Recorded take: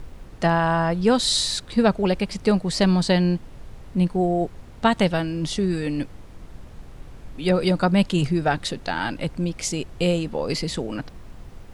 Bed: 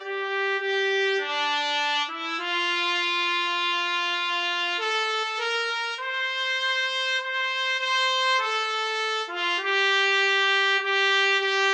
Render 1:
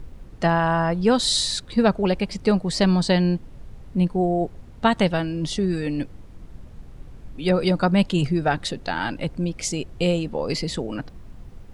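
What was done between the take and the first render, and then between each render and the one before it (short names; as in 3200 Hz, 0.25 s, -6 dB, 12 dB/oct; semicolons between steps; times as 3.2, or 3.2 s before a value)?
denoiser 6 dB, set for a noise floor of -43 dBFS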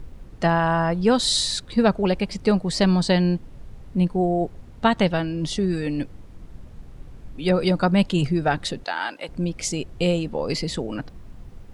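4.87–5.39 bell 9200 Hz -5.5 dB 0.67 oct; 8.84–9.29 HPF 540 Hz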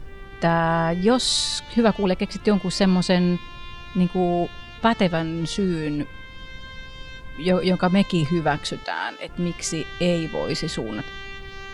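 add bed -16.5 dB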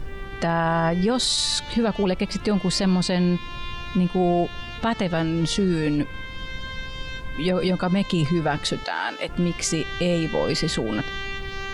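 in parallel at -1 dB: compressor, threshold -28 dBFS, peak gain reduction 14.5 dB; on the sum: limiter -13 dBFS, peak gain reduction 9 dB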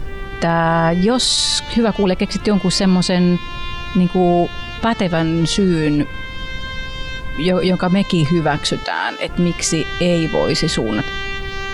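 gain +6.5 dB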